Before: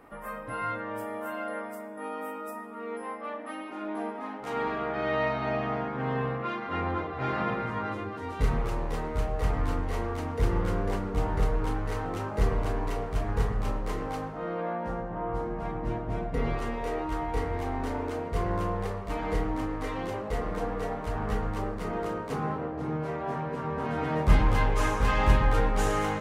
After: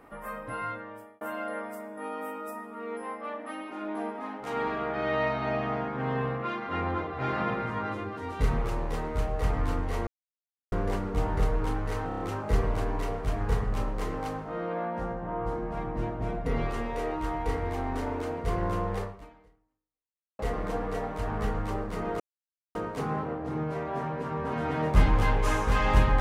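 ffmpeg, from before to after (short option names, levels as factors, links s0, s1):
-filter_complex "[0:a]asplit=10[s0][s1][s2][s3][s4][s5][s6][s7][s8][s9];[s0]atrim=end=1.21,asetpts=PTS-STARTPTS,afade=t=out:st=0.49:d=0.72[s10];[s1]atrim=start=1.21:end=10.07,asetpts=PTS-STARTPTS,afade=t=in:d=0.004:c=hsin,afade=t=out:st=8.856:d=0.004:c=hsin[s11];[s2]atrim=start=10.07:end=10.72,asetpts=PTS-STARTPTS,volume=0[s12];[s3]atrim=start=10.72:end=12.112,asetpts=PTS-STARTPTS,afade=t=in:d=0.004:c=hsin[s13];[s4]atrim=start=12.078:end=12.112[s14];[s5]atrim=start=12.078:end=12.112[s15];[s6]atrim=start=12.078:end=12.112[s16];[s7]atrim=start=12.078:end=20.27,asetpts=PTS-STARTPTS,afade=t=out:st=6.832:d=1.36:c=exp[s17];[s8]atrim=start=20.27:end=22.08,asetpts=PTS-STARTPTS,afade=t=in:d=0.004:c=hsin,afade=t=out:st=1.806:d=0.004:c=hsin,apad=pad_dur=0.55[s18];[s9]atrim=start=22.08,asetpts=PTS-STARTPTS,afade=t=in:d=0.004:c=hsin[s19];[s10][s11][s12][s13]concat=n=4:v=0:a=1[s20];[s20][s14]acrossfade=d=0.004:c1=hsin:c2=hsin[s21];[s21][s15]acrossfade=d=0.004:c1=hsin:c2=hsin[s22];[s22][s16]acrossfade=d=0.004:c1=hsin:c2=hsin[s23];[s17][s18][s19]concat=n=3:v=0:a=1[s24];[s23][s24]acrossfade=d=0.004:c1=hsin:c2=hsin"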